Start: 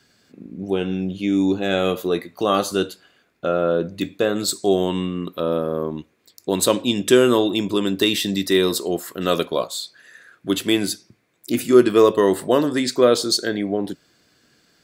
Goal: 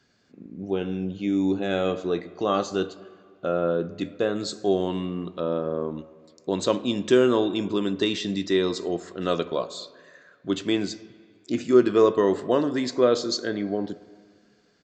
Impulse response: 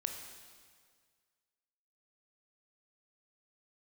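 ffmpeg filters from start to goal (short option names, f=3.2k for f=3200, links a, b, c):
-filter_complex "[0:a]aresample=16000,aresample=44100,asplit=2[a][b];[1:a]atrim=start_sample=2205,lowpass=2.1k[c];[b][c]afir=irnorm=-1:irlink=0,volume=-6.5dB[d];[a][d]amix=inputs=2:normalize=0,volume=-7.5dB"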